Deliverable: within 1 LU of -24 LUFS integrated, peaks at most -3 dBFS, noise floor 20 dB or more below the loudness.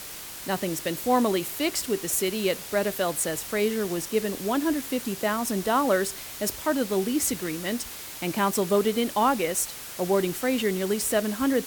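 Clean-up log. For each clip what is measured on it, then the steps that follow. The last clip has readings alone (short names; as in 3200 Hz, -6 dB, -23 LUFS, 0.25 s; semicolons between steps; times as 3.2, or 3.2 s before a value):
noise floor -39 dBFS; noise floor target -46 dBFS; loudness -26.0 LUFS; peak -10.5 dBFS; loudness target -24.0 LUFS
-> denoiser 7 dB, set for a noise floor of -39 dBFS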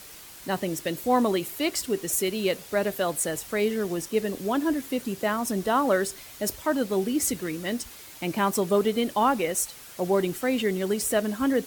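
noise floor -45 dBFS; noise floor target -47 dBFS
-> denoiser 6 dB, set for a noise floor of -45 dBFS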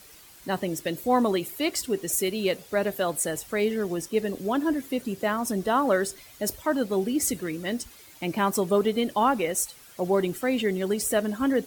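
noise floor -50 dBFS; loudness -26.5 LUFS; peak -11.0 dBFS; loudness target -24.0 LUFS
-> gain +2.5 dB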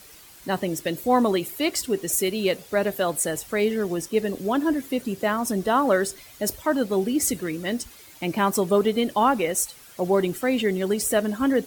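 loudness -24.0 LUFS; peak -8.5 dBFS; noise floor -48 dBFS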